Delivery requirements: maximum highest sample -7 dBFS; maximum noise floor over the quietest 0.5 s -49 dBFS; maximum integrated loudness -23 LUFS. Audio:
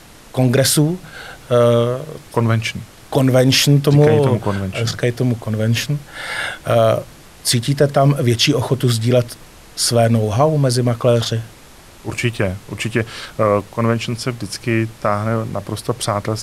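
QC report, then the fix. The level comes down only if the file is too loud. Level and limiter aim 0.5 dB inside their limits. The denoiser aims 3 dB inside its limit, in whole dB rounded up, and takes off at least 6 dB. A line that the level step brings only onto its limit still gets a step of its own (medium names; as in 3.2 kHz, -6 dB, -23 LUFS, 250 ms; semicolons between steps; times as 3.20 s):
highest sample -2.5 dBFS: fail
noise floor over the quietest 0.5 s -42 dBFS: fail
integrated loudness -17.0 LUFS: fail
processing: noise reduction 6 dB, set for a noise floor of -42 dBFS; trim -6.5 dB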